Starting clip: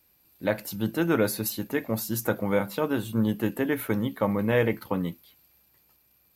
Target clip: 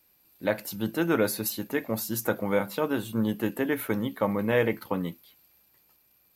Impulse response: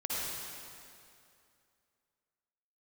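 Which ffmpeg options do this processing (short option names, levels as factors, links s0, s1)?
-af "equalizer=f=61:w=0.45:g=-6"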